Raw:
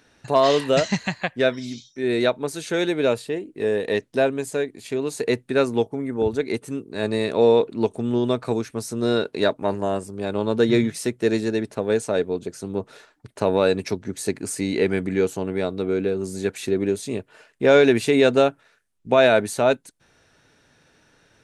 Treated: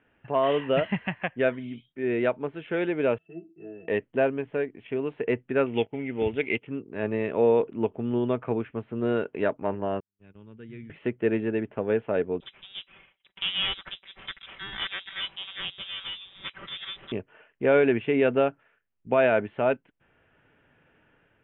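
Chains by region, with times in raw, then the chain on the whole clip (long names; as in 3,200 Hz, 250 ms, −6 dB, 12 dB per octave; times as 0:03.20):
0:03.18–0:03.88: high-pass filter 110 Hz + resonances in every octave E, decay 0.16 s
0:05.66–0:06.67: mu-law and A-law mismatch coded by A + flat-topped bell 2,800 Hz +13 dB 1.1 octaves + notch filter 1,100 Hz, Q 6.2
0:10.00–0:10.90: noise gate −28 dBFS, range −38 dB + guitar amp tone stack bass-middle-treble 6-0-2
0:12.40–0:17.12: lower of the sound and its delayed copy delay 5.1 ms + voice inversion scrambler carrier 3,900 Hz
whole clip: Butterworth low-pass 3,200 Hz 96 dB per octave; automatic gain control gain up to 4 dB; level −7.5 dB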